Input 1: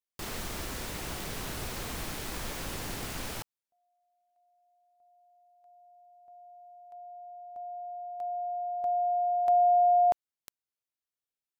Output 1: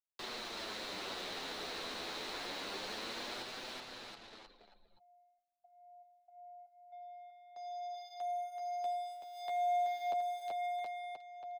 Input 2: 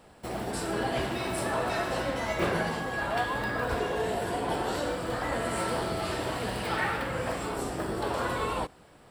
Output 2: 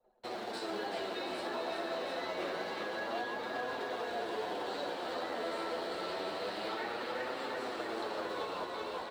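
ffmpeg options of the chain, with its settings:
ffmpeg -i in.wav -filter_complex "[0:a]equalizer=frequency=200:width_type=o:width=0.33:gain=5,equalizer=frequency=4000:width_type=o:width=0.33:gain=10,equalizer=frequency=16000:width_type=o:width=0.33:gain=-8,acrusher=bits=3:mode=log:mix=0:aa=0.000001,acrossover=split=280 5600:gain=0.178 1 0.178[link_01][link_02][link_03];[link_01][link_02][link_03]amix=inputs=3:normalize=0,asplit=2[link_04][link_05];[link_05]aecho=0:1:380|722|1030|1307|1556:0.631|0.398|0.251|0.158|0.1[link_06];[link_04][link_06]amix=inputs=2:normalize=0,anlmdn=0.00631,acrossover=split=250|590[link_07][link_08][link_09];[link_07]acompressor=threshold=-57dB:ratio=4[link_10];[link_08]acompressor=threshold=-36dB:ratio=4[link_11];[link_09]acompressor=threshold=-37dB:ratio=4[link_12];[link_10][link_11][link_12]amix=inputs=3:normalize=0,flanger=delay=7.9:depth=4.1:regen=-16:speed=0.27:shape=sinusoidal,areverse,acompressor=mode=upward:threshold=-48dB:ratio=2.5:attack=0.14:release=974:knee=2.83:detection=peak,areverse" out.wav

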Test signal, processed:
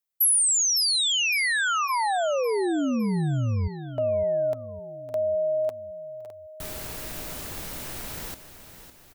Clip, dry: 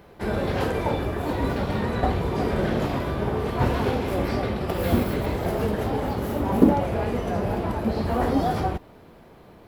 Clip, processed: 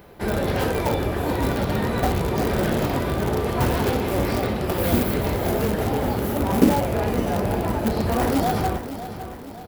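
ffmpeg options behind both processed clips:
ffmpeg -i in.wav -filter_complex "[0:a]bandreject=frequency=1100:width=26,asplit=2[link_01][link_02];[link_02]aeval=exprs='(mod(7.08*val(0)+1,2)-1)/7.08':channel_layout=same,volume=-10dB[link_03];[link_01][link_03]amix=inputs=2:normalize=0,highshelf=frequency=11000:gain=10.5,aecho=1:1:558|1116|1674|2232|2790:0.251|0.128|0.0653|0.0333|0.017" out.wav

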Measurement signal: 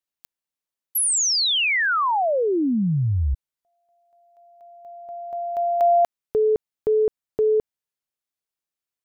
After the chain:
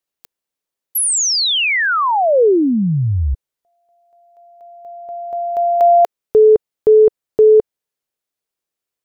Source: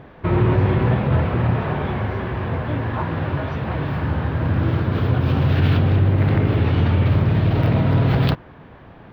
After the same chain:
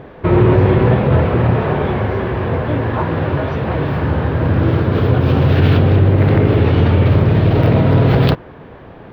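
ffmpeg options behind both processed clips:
ffmpeg -i in.wav -af "equalizer=frequency=450:width_type=o:width=0.96:gain=6,volume=4.5dB" out.wav

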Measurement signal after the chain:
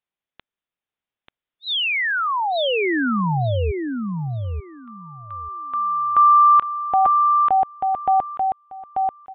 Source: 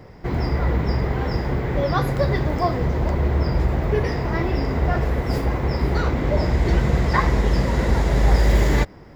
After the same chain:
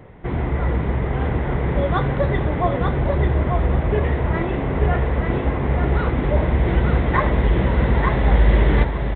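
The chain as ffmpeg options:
ffmpeg -i in.wav -af "aresample=8000,aresample=44100,aecho=1:1:888|1776|2664:0.631|0.107|0.0182" out.wav

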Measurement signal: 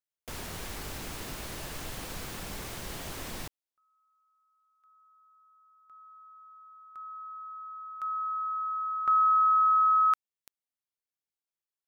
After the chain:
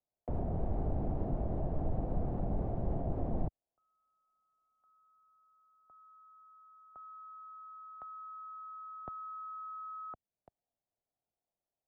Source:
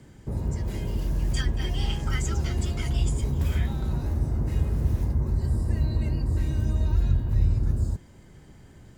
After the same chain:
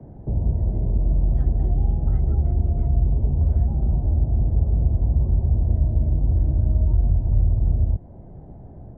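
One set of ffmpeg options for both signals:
ffmpeg -i in.wav -filter_complex "[0:a]lowpass=frequency=700:width_type=q:width=4.5,acrossover=split=87|410[link_01][link_02][link_03];[link_01]acompressor=threshold=-26dB:ratio=4[link_04];[link_02]acompressor=threshold=-36dB:ratio=4[link_05];[link_03]acompressor=threshold=-48dB:ratio=4[link_06];[link_04][link_05][link_06]amix=inputs=3:normalize=0,lowshelf=frequency=320:gain=10" out.wav

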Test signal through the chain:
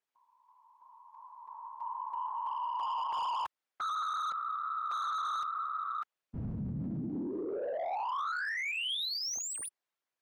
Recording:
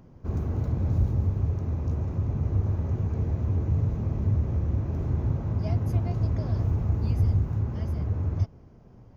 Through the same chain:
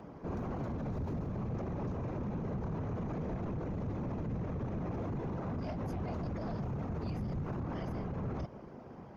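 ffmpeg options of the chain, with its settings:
ffmpeg -i in.wav -filter_complex "[0:a]afftfilt=real='hypot(re,im)*cos(2*PI*random(0))':imag='hypot(re,im)*sin(2*PI*random(1))':win_size=512:overlap=0.75,asplit=2[link_01][link_02];[link_02]highpass=frequency=720:poles=1,volume=25dB,asoftclip=type=tanh:threshold=-16dB[link_03];[link_01][link_03]amix=inputs=2:normalize=0,lowpass=frequency=1400:poles=1,volume=-6dB,acrossover=split=130|3000[link_04][link_05][link_06];[link_05]acompressor=threshold=-30dB:ratio=6[link_07];[link_04][link_07][link_06]amix=inputs=3:normalize=0,alimiter=level_in=6.5dB:limit=-24dB:level=0:latency=1:release=36,volume=-6.5dB" out.wav

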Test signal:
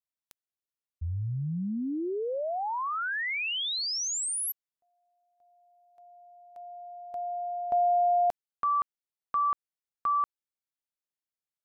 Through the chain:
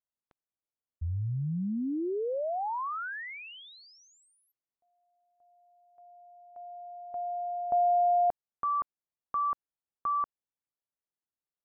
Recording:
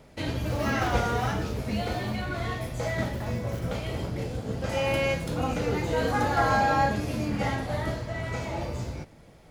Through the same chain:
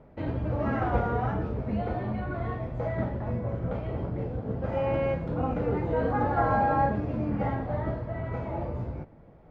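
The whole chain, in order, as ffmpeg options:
ffmpeg -i in.wav -af "lowpass=1200" out.wav

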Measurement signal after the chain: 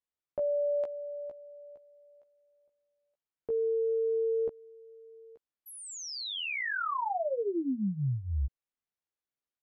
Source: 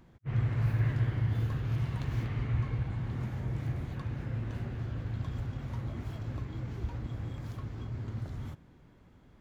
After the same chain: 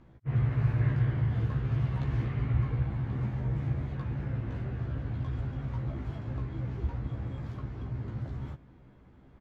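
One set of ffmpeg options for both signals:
ffmpeg -i in.wav -filter_complex "[0:a]aemphasis=mode=reproduction:type=75fm,asplit=2[link_01][link_02];[link_02]adelay=15,volume=-3dB[link_03];[link_01][link_03]amix=inputs=2:normalize=0" out.wav

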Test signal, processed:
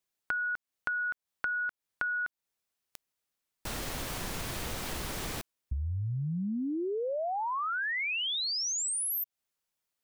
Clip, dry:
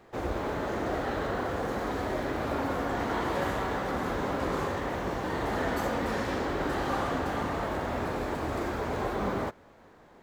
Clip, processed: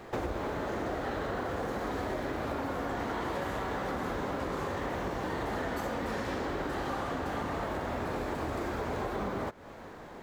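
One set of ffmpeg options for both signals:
ffmpeg -i in.wav -af "acompressor=threshold=-40dB:ratio=10,volume=9dB" out.wav

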